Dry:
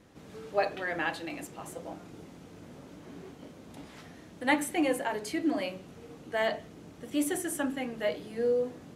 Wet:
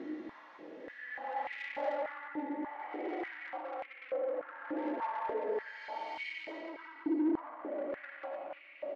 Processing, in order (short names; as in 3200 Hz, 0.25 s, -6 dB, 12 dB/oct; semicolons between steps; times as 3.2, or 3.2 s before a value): air absorption 270 m; treble ducked by the level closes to 1100 Hz, closed at -28.5 dBFS; comb 3.6 ms, depth 39%; on a send at -10 dB: reverb RT60 0.50 s, pre-delay 95 ms; on the sum: compressor 3:1, threshold -35 dBFS, peak gain reduction 11 dB; Paulstretch 5.6×, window 0.25 s, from 4.19; soft clip -37 dBFS, distortion -10 dB; bell 2000 Hz +6 dB 0.2 oct; stepped high-pass 3.4 Hz 330–2300 Hz